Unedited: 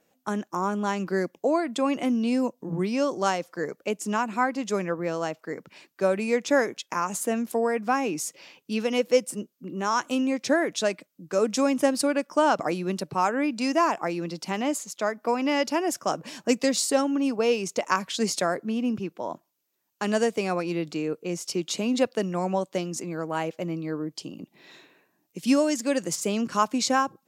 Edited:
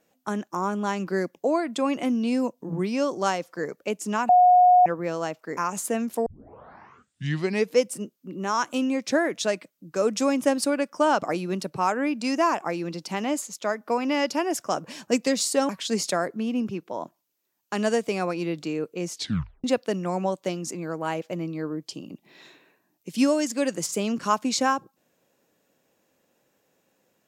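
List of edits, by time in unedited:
0:04.29–0:04.86: beep over 724 Hz −12 dBFS
0:05.57–0:06.94: remove
0:07.63: tape start 1.54 s
0:17.06–0:17.98: remove
0:21.39: tape stop 0.54 s

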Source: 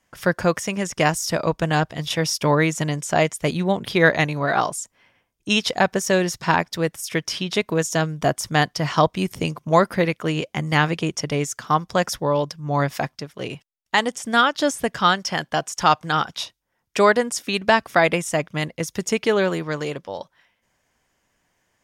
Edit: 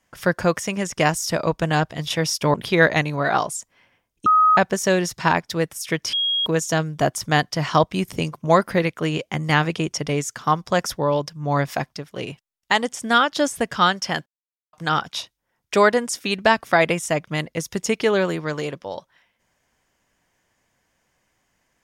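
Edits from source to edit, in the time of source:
0:02.54–0:03.77: remove
0:05.49–0:05.80: beep over 1,260 Hz −11.5 dBFS
0:07.36–0:07.69: beep over 3,280 Hz −18.5 dBFS
0:15.49–0:15.96: silence

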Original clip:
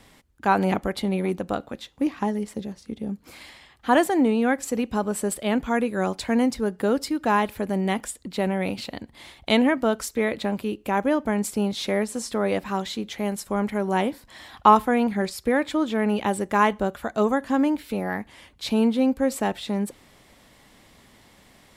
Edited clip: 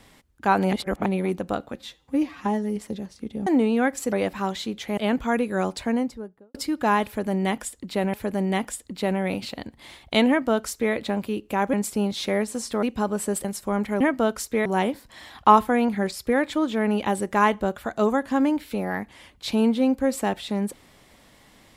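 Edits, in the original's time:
0:00.73–0:01.06: reverse
0:01.76–0:02.43: time-stretch 1.5×
0:03.13–0:04.12: remove
0:04.78–0:05.40: swap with 0:12.43–0:13.28
0:06.08–0:06.97: fade out and dull
0:07.49–0:08.56: repeat, 2 plays
0:09.64–0:10.29: duplicate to 0:13.84
0:11.09–0:11.34: remove

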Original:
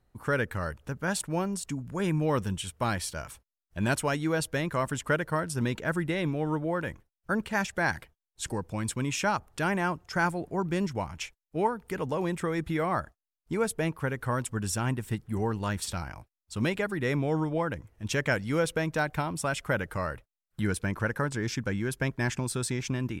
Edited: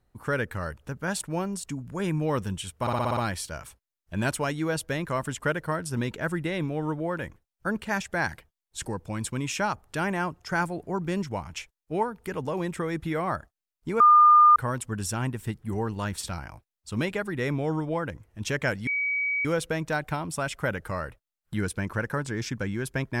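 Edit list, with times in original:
0:02.81: stutter 0.06 s, 7 plays
0:13.64–0:14.20: beep over 1,210 Hz −12 dBFS
0:18.51: insert tone 2,270 Hz −24 dBFS 0.58 s

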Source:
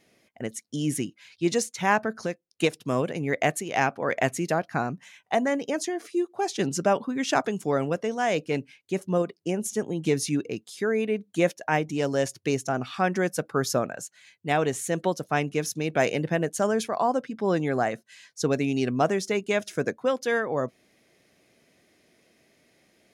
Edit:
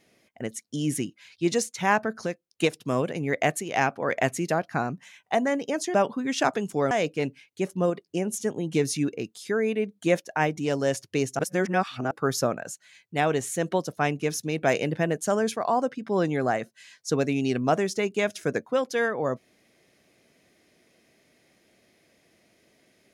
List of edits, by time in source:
0:05.94–0:06.85: remove
0:07.82–0:08.23: remove
0:12.71–0:13.43: reverse

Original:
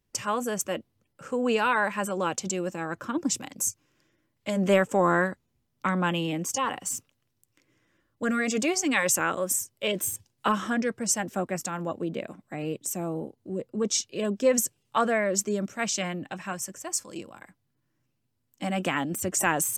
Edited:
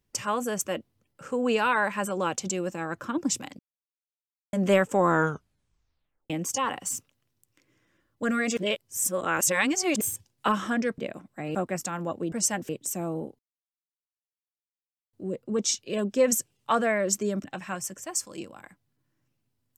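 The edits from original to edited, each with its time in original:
0:03.59–0:04.53: silence
0:05.08: tape stop 1.22 s
0:08.57–0:10.01: reverse
0:10.98–0:11.35: swap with 0:12.12–0:12.69
0:13.39: splice in silence 1.74 s
0:15.70–0:16.22: remove

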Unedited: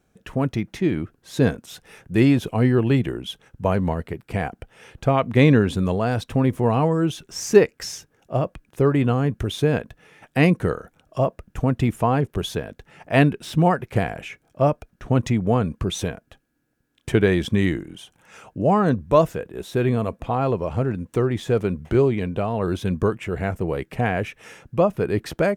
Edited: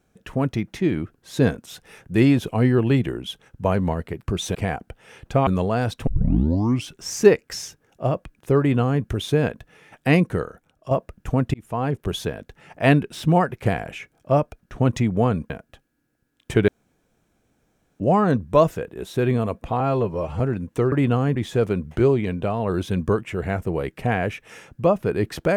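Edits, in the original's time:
0:05.19–0:05.77: remove
0:06.37: tape start 0.85 s
0:08.89–0:09.33: duplicate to 0:21.30
0:10.40–0:11.21: fade out, to −8 dB
0:11.84–0:12.52: fade in equal-power
0:15.80–0:16.08: move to 0:04.27
0:17.26–0:18.58: fill with room tone
0:20.38–0:20.78: time-stretch 1.5×

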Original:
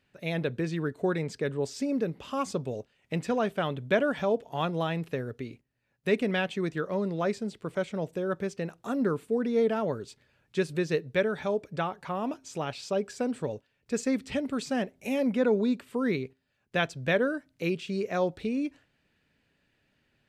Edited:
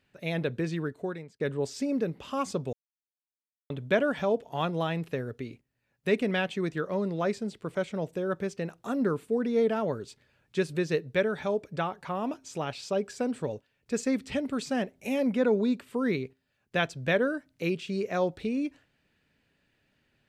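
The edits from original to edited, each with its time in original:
0:00.73–0:01.40: fade out
0:02.73–0:03.70: silence

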